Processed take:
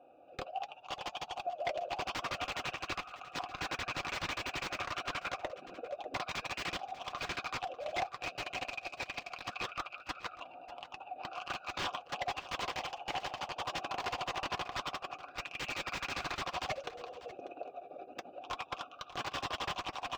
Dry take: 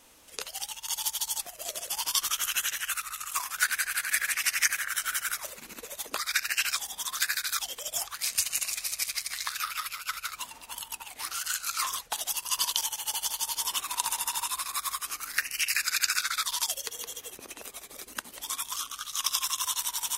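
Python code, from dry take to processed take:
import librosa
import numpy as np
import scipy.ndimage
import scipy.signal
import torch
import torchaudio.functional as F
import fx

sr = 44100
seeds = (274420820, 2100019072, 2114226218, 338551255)

p1 = fx.wiener(x, sr, points=41)
p2 = scipy.signal.sosfilt(scipy.signal.butter(2, 74.0, 'highpass', fs=sr, output='sos'), p1)
p3 = fx.notch(p2, sr, hz=1800.0, q=5.9)
p4 = fx.cheby_harmonics(p3, sr, harmonics=(5, 8), levels_db=(-16, -27), full_scale_db=-4.0)
p5 = fx.vowel_filter(p4, sr, vowel='a')
p6 = (np.mod(10.0 ** (42.0 / 20.0) * p5 + 1.0, 2.0) - 1.0) / 10.0 ** (42.0 / 20.0)
p7 = fx.air_absorb(p6, sr, metres=190.0)
p8 = fx.notch_comb(p7, sr, f0_hz=220.0)
p9 = p8 + fx.echo_single(p8, sr, ms=593, db=-16.5, dry=0)
y = p9 * 10.0 ** (18.0 / 20.0)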